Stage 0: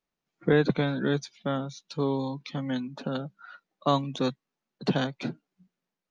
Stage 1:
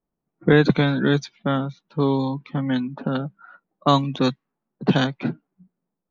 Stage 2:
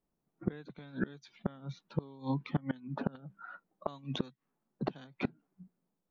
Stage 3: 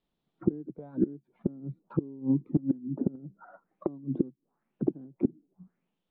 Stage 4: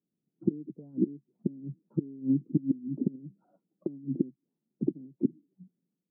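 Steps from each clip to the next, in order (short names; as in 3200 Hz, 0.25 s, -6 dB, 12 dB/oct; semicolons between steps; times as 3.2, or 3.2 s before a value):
low-pass opened by the level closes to 720 Hz, open at -20 dBFS; bell 540 Hz -4 dB 1 oct; gain +8.5 dB
compressor 1.5:1, threshold -29 dBFS, peak gain reduction 7 dB; flipped gate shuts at -17 dBFS, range -25 dB; gain -1.5 dB
envelope low-pass 330–3600 Hz down, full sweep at -41 dBFS; gain +1.5 dB
Butterworth band-pass 220 Hz, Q 0.91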